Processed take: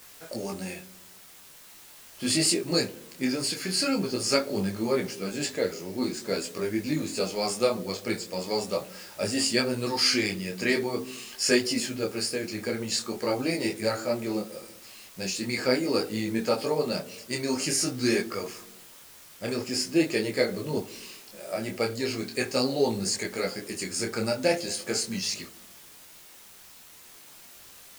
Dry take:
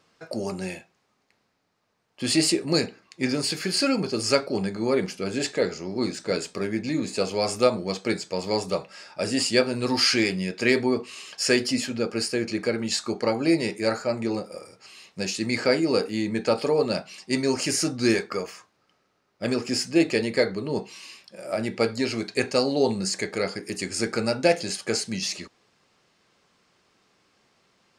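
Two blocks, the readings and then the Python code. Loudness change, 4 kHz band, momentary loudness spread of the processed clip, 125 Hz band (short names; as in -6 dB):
-2.5 dB, -1.5 dB, 22 LU, -3.0 dB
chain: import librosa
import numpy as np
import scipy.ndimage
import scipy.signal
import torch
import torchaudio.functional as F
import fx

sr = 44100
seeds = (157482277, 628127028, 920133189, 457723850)

p1 = fx.high_shelf(x, sr, hz=8800.0, db=9.0)
p2 = fx.quant_dither(p1, sr, seeds[0], bits=6, dither='triangular')
p3 = p1 + (p2 * librosa.db_to_amplitude(-7.0))
p4 = fx.echo_wet_lowpass(p3, sr, ms=70, feedback_pct=68, hz=480.0, wet_db=-14)
p5 = fx.detune_double(p4, sr, cents=15)
y = p5 * librosa.db_to_amplitude(-3.0)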